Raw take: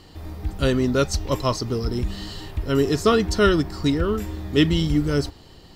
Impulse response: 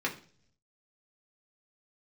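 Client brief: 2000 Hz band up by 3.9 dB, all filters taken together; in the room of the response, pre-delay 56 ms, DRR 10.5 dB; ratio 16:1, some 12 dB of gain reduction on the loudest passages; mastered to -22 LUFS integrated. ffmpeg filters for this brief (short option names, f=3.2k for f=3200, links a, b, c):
-filter_complex "[0:a]equalizer=f=2k:t=o:g=5.5,acompressor=threshold=-23dB:ratio=16,asplit=2[a][b];[1:a]atrim=start_sample=2205,adelay=56[c];[b][c]afir=irnorm=-1:irlink=0,volume=-18dB[d];[a][d]amix=inputs=2:normalize=0,volume=7dB"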